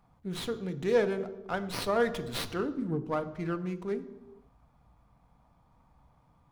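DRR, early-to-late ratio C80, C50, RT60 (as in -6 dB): 9.0 dB, 16.0 dB, 14.0 dB, 1.1 s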